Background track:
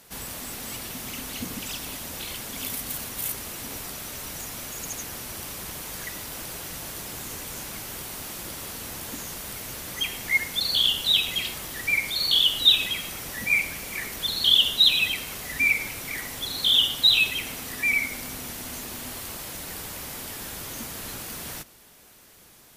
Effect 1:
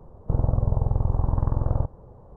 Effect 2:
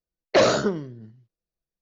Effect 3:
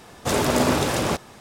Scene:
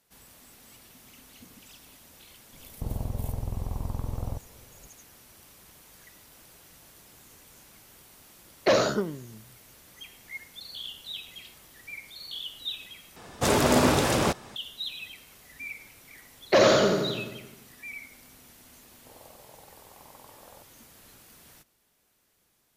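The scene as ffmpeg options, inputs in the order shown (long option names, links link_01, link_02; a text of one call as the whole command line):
ffmpeg -i bed.wav -i cue0.wav -i cue1.wav -i cue2.wav -filter_complex "[1:a]asplit=2[link_01][link_02];[2:a]asplit=2[link_03][link_04];[0:a]volume=-17.5dB[link_05];[link_01]asoftclip=type=hard:threshold=-15.5dB[link_06];[link_04]aecho=1:1:86|172|258|344|430|516|602|688|774:0.708|0.425|0.255|0.153|0.0917|0.055|0.033|0.0198|0.0119[link_07];[link_02]highpass=580[link_08];[link_05]asplit=2[link_09][link_10];[link_09]atrim=end=13.164[link_11];[3:a]atrim=end=1.4,asetpts=PTS-STARTPTS,volume=-1dB[link_12];[link_10]atrim=start=14.556[link_13];[link_06]atrim=end=2.36,asetpts=PTS-STARTPTS,volume=-8dB,afade=type=in:duration=0.004:curve=hsin,afade=type=out:start_time=2.356:duration=0.004:curve=hsin,adelay=2520[link_14];[link_03]atrim=end=1.81,asetpts=PTS-STARTPTS,volume=-4dB,afade=type=in:duration=0.004:curve=hsin,afade=type=out:start_time=1.806:duration=0.004:curve=hsin,adelay=8320[link_15];[link_07]atrim=end=1.81,asetpts=PTS-STARTPTS,volume=-2.5dB,afade=type=in:duration=0.004:curve=hsin,afade=type=out:start_time=1.806:duration=0.004:curve=hsin,adelay=16180[link_16];[link_08]atrim=end=2.36,asetpts=PTS-STARTPTS,volume=-14.5dB,afade=type=in:duration=0.004:curve=hsin,afade=type=out:start_time=2.356:duration=0.004:curve=hsin,adelay=18770[link_17];[link_11][link_12]acrossfade=duration=0.004:curve1=hsin:curve2=hsin[link_18];[link_18][link_13]acrossfade=duration=0.004:curve1=hsin:curve2=hsin[link_19];[link_19][link_14][link_15][link_16][link_17]amix=inputs=5:normalize=0" out.wav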